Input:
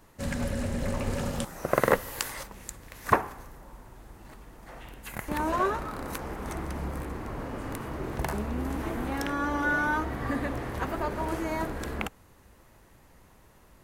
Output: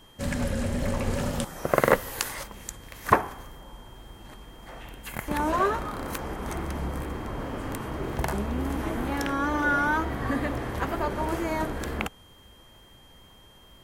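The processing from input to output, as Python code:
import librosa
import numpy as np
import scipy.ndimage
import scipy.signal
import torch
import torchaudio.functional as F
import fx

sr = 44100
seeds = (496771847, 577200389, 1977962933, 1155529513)

y = fx.wow_flutter(x, sr, seeds[0], rate_hz=2.1, depth_cents=49.0)
y = y + 10.0 ** (-58.0 / 20.0) * np.sin(2.0 * np.pi * 3200.0 * np.arange(len(y)) / sr)
y = F.gain(torch.from_numpy(y), 2.5).numpy()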